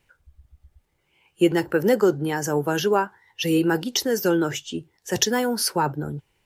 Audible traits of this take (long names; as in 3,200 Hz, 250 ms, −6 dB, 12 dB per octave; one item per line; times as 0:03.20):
background noise floor −70 dBFS
spectral slope −4.0 dB per octave